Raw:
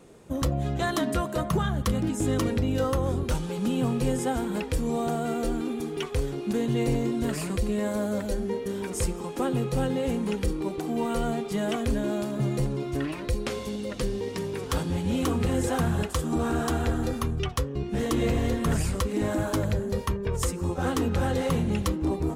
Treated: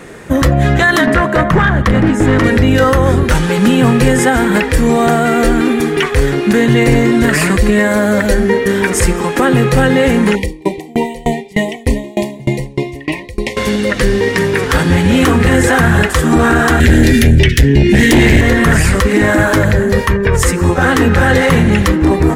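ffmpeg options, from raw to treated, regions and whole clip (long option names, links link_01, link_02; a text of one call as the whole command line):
ffmpeg -i in.wav -filter_complex "[0:a]asettb=1/sr,asplit=3[link_01][link_02][link_03];[link_01]atrim=end=1.064[link_04];[link_02]atrim=start=1.06:end=2.44,asetpts=PTS-STARTPTS,afade=type=in:duration=0.004:curve=qsin,afade=type=out:start_time=1.376:duration=0.004:curve=qsin,lowpass=frequency=2100:poles=1,aeval=exprs='clip(val(0),-1,0.0531)':channel_layout=same[link_05];[link_03]atrim=start=2.436[link_06];[link_04][link_05]acrossfade=duration=0.004:curve1=hsin:curve2=qsin[link_07];[link_07][link_06]acrossfade=duration=0.004:curve1=qsin:curve2=hsin,asettb=1/sr,asplit=3[link_08][link_09][link_10];[link_08]atrim=end=10.354[link_11];[link_09]atrim=start=10.35:end=13.57,asetpts=PTS-STARTPTS,afade=type=in:duration=0.004:curve=qsin,afade=type=out:start_time=3.216:duration=0.004:curve=qsin,asuperstop=centerf=1400:order=20:qfactor=1.8,aeval=exprs='val(0)*pow(10,-27*if(lt(mod(3.3*n/s,1),2*abs(3.3)/1000),1-mod(3.3*n/s,1)/(2*abs(3.3)/1000),(mod(3.3*n/s,1)-2*abs(3.3)/1000)/(1-2*abs(3.3)/1000))/20)':channel_layout=same[link_12];[link_10]atrim=start=13.566[link_13];[link_11][link_12]acrossfade=duration=0.004:curve1=hsin:curve2=qsin[link_14];[link_14][link_13]acrossfade=duration=0.004:curve1=qsin:curve2=hsin,asettb=1/sr,asplit=3[link_15][link_16][link_17];[link_15]atrim=end=16.804[link_18];[link_16]atrim=start=16.8:end=18.41,asetpts=PTS-STARTPTS,afade=type=in:duration=0.004:curve=qsin,afade=type=out:start_time=1.606:duration=0.004:curve=qsin,asuperstop=centerf=850:order=8:qfactor=0.6,aeval=exprs='0.168*sin(PI/2*2*val(0)/0.168)':channel_layout=same[link_19];[link_17]atrim=start=18.406[link_20];[link_18][link_19]acrossfade=duration=0.004:curve1=hsin:curve2=qsin[link_21];[link_21][link_20]acrossfade=duration=0.004:curve1=qsin:curve2=hsin,equalizer=frequency=1800:width_type=o:width=0.76:gain=13.5,alimiter=level_in=18.5dB:limit=-1dB:release=50:level=0:latency=1,volume=-1dB" out.wav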